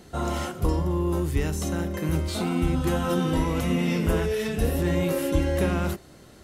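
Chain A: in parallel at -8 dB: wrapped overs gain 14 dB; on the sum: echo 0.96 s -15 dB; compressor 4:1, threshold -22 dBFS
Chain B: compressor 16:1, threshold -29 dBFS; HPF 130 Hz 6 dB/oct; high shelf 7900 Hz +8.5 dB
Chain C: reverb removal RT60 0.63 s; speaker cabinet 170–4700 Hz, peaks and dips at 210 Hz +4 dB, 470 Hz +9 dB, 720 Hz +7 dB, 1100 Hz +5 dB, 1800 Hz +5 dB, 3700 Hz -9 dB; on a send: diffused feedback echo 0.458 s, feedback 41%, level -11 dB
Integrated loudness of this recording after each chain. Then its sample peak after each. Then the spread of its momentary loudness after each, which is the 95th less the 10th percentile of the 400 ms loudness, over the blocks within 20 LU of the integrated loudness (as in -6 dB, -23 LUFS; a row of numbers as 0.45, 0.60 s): -26.5, -35.0, -25.5 LUFS; -13.5, -19.5, -10.5 dBFS; 2, 3, 6 LU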